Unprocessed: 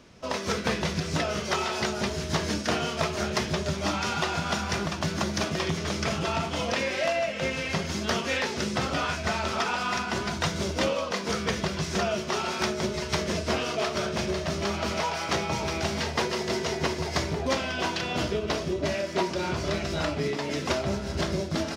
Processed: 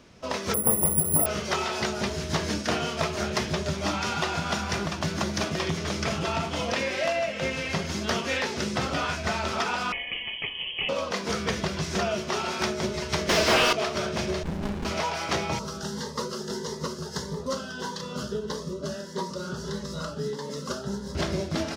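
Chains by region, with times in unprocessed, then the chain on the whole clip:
0.54–1.26 s: Savitzky-Golay filter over 65 samples + careless resampling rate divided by 4×, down filtered, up zero stuff
9.92–10.89 s: static phaser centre 460 Hz, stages 6 + frequency inversion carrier 3.2 kHz
13.29–13.73 s: peaking EQ 5.4 kHz +8 dB 2.5 oct + overdrive pedal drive 28 dB, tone 1.6 kHz, clips at -9.5 dBFS
14.43–14.85 s: distance through air 95 m + comb 4.7 ms, depth 41% + sliding maximum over 65 samples
15.59–21.15 s: static phaser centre 470 Hz, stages 8 + Shepard-style phaser rising 1.6 Hz
whole clip: none

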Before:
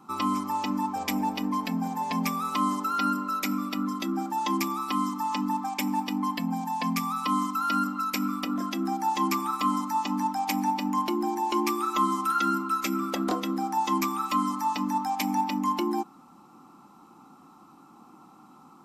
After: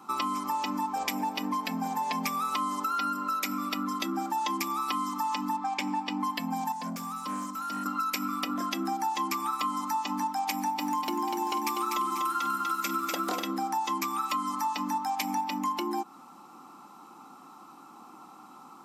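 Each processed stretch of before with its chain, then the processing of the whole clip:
5.56–6.20 s: distance through air 80 m + band-stop 5.9 kHz, Q 29 + doubling 14 ms -13 dB
6.72–7.86 s: FFT filter 100 Hz 0 dB, 380 Hz -21 dB, 1.2 kHz -26 dB, 2.5 kHz -28 dB, 7.1 kHz -8 dB + overdrive pedal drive 27 dB, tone 1.1 kHz, clips at -23 dBFS
10.54–13.43 s: treble shelf 10 kHz +5.5 dB + bit-crushed delay 245 ms, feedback 55%, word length 9-bit, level -4.5 dB
whole clip: high-pass 500 Hz 6 dB/octave; compression, threshold -33 dBFS; trim +5.5 dB

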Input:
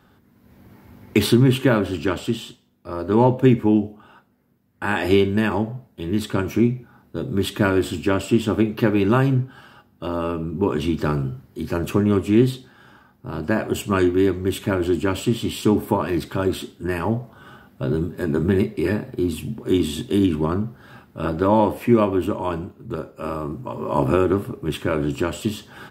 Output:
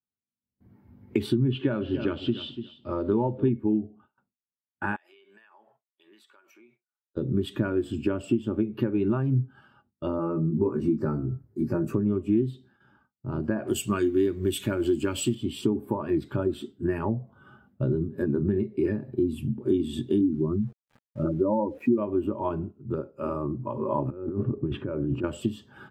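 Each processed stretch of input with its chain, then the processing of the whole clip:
1.52–3.49 s: companding laws mixed up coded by mu + resonant low-pass 3.9 kHz, resonance Q 1.7 + feedback delay 290 ms, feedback 18%, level -12.5 dB
4.96–7.17 s: high-pass 920 Hz + compression 16:1, threshold -42 dBFS
10.17–11.94 s: peaking EQ 3.2 kHz -14.5 dB 0.51 oct + doubling 18 ms -3.5 dB
13.67–15.35 s: companding laws mixed up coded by mu + treble shelf 2.2 kHz +11.5 dB
20.21–21.98 s: spectral contrast enhancement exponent 1.7 + small samples zeroed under -37.5 dBFS
24.10–25.24 s: compressor with a negative ratio -27 dBFS + tape spacing loss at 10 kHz 26 dB
whole clip: gate with hold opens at -39 dBFS; compression 6:1, threshold -24 dBFS; spectral contrast expander 1.5:1

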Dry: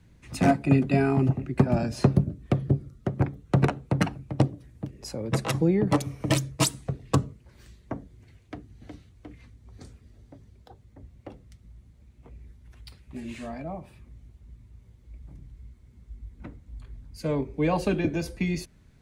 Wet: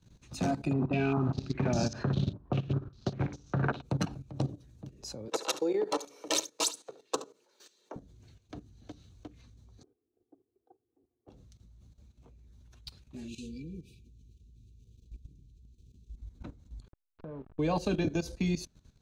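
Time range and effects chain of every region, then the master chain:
0.73–3.82 s: companded quantiser 6-bit + flutter echo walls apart 10 m, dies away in 0.3 s + step-sequenced low-pass 5 Hz 990–6000 Hz
5.28–7.96 s: high-pass 350 Hz 24 dB/octave + comb 2.2 ms, depth 30% + delay 71 ms -13 dB
9.83–11.28 s: ladder band-pass 420 Hz, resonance 35% + comb 2.6 ms, depth 92%
13.28–16.17 s: upward compressor, threshold -60 dBFS + brick-wall FIR band-stop 500–2300 Hz
16.88–17.59 s: send-on-delta sampling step -34.5 dBFS + low-pass 2 kHz 24 dB/octave + compression 4:1, threshold -39 dBFS
whole clip: graphic EQ with 31 bands 2 kHz -10 dB, 4 kHz +8 dB, 6.3 kHz +9 dB, 10 kHz -4 dB; level held to a coarse grid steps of 14 dB

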